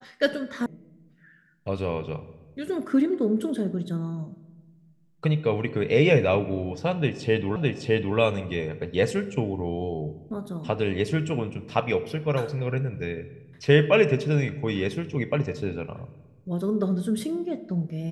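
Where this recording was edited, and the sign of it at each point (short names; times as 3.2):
0.66 sound cut off
7.56 repeat of the last 0.61 s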